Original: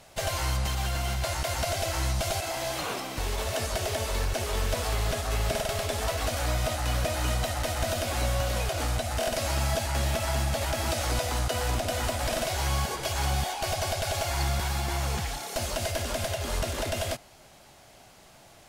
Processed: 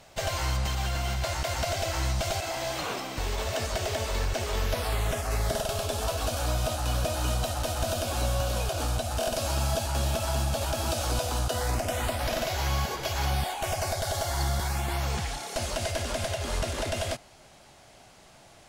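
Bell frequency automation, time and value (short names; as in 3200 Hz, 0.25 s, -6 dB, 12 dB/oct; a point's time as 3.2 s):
bell -13.5 dB 0.29 oct
4.53 s 11000 Hz
5.67 s 2000 Hz
11.48 s 2000 Hz
12.33 s 8900 Hz
13.24 s 8900 Hz
14.04 s 2500 Hz
14.63 s 2500 Hz
15.19 s 14000 Hz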